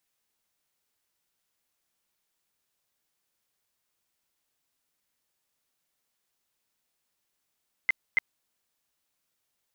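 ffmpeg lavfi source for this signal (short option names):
-f lavfi -i "aevalsrc='0.126*sin(2*PI*2070*mod(t,0.28))*lt(mod(t,0.28),33/2070)':d=0.56:s=44100"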